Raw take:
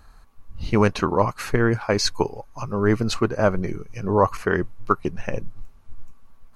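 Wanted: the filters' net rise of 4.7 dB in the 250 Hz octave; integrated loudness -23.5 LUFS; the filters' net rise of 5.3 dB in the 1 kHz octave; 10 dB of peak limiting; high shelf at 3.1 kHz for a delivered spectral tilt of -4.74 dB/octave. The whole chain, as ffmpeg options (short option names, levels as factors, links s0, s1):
-af "equalizer=f=250:t=o:g=6,equalizer=f=1000:t=o:g=5,highshelf=f=3100:g=7.5,volume=0.891,alimiter=limit=0.335:level=0:latency=1"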